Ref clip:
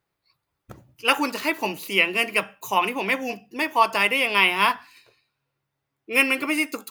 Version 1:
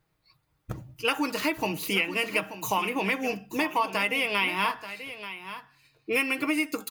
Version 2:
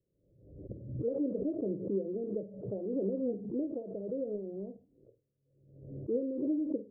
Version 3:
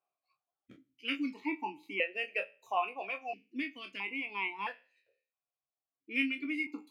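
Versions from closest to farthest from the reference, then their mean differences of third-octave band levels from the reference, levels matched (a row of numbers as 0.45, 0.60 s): 1, 3, 2; 5.0, 10.0, 19.5 dB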